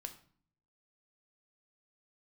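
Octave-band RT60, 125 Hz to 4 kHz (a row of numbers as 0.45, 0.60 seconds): 0.90, 0.80, 0.50, 0.50, 0.45, 0.40 seconds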